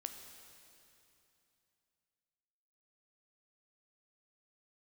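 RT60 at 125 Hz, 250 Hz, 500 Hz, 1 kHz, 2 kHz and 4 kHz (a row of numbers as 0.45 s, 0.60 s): 3.3 s, 3.1 s, 2.9 s, 2.9 s, 2.8 s, 2.8 s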